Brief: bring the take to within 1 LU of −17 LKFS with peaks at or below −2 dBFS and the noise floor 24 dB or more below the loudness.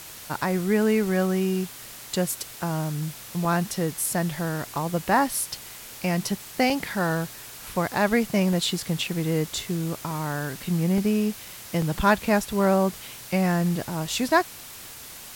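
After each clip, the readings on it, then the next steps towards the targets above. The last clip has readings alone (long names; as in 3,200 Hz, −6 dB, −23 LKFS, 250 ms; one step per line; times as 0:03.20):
number of dropouts 8; longest dropout 1.7 ms; background noise floor −42 dBFS; target noise floor −50 dBFS; integrated loudness −25.5 LKFS; sample peak −7.5 dBFS; target loudness −17.0 LKFS
→ repair the gap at 0:03.45/0:04.76/0:06.70/0:08.53/0:10.11/0:10.98/0:11.82/0:14.19, 1.7 ms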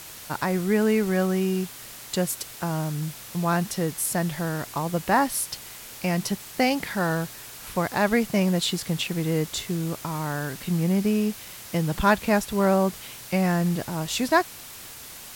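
number of dropouts 0; background noise floor −42 dBFS; target noise floor −50 dBFS
→ broadband denoise 8 dB, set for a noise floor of −42 dBFS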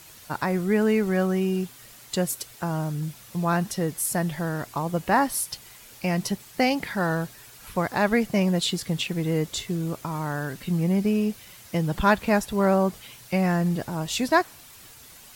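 background noise floor −48 dBFS; target noise floor −50 dBFS
→ broadband denoise 6 dB, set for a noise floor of −48 dBFS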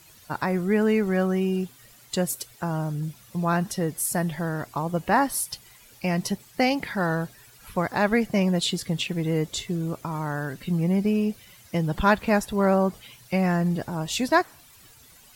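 background noise floor −53 dBFS; integrated loudness −25.5 LKFS; sample peak −7.5 dBFS; target loudness −17.0 LKFS
→ level +8.5 dB
brickwall limiter −2 dBFS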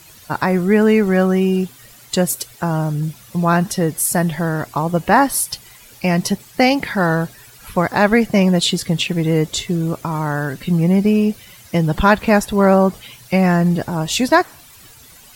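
integrated loudness −17.0 LKFS; sample peak −2.0 dBFS; background noise floor −44 dBFS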